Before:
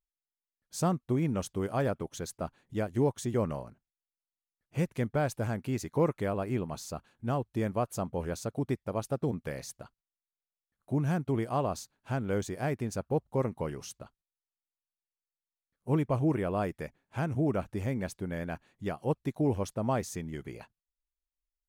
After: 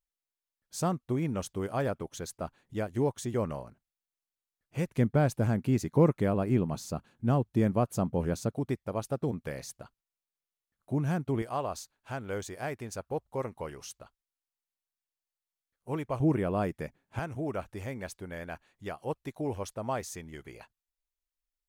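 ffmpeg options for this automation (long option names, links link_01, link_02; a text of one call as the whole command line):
ffmpeg -i in.wav -af "asetnsamples=nb_out_samples=441:pad=0,asendcmd='4.97 equalizer g 7;8.52 equalizer g -0.5;11.42 equalizer g -9;16.2 equalizer g 2.5;17.19 equalizer g -8.5',equalizer=frequency=180:width_type=o:width=2.3:gain=-2" out.wav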